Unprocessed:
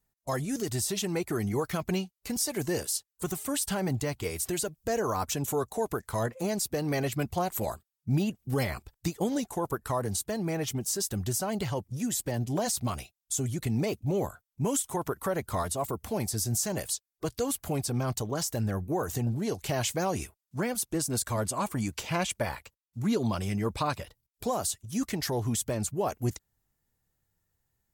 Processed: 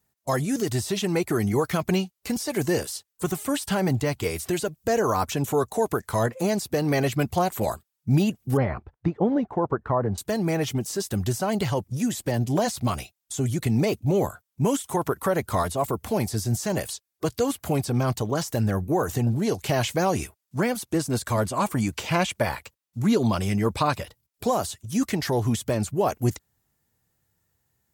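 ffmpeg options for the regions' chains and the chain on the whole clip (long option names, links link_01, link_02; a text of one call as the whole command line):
ffmpeg -i in.wav -filter_complex "[0:a]asettb=1/sr,asplit=3[link_01][link_02][link_03];[link_01]atrim=end=8.574[link_04];[link_02]atrim=start=8.57:end=10.18,asetpts=PTS-STARTPTS,afade=type=in:duration=0.004:curve=qsin,afade=type=out:start_time=1.606:duration=0.004:curve=qsin,lowpass=1500,aemphasis=mode=reproduction:type=50fm[link_05];[link_03]atrim=start=10.176[link_06];[link_04][link_05]acrossfade=duration=0.004:curve1=hsin:curve2=qsin[link_07];[link_07][link_06]acrossfade=duration=0.004:curve1=qsin:curve2=hsin,highpass=68,acrossover=split=3700[link_08][link_09];[link_09]acompressor=threshold=-39dB:ratio=4:attack=1:release=60[link_10];[link_08][link_10]amix=inputs=2:normalize=0,volume=6.5dB" out.wav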